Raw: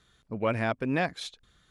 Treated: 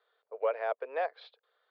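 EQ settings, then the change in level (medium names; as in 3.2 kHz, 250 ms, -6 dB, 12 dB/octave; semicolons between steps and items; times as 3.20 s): Chebyshev band-pass 450–4800 Hz, order 5; tilt shelf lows +10 dB, about 1.5 kHz; -7.0 dB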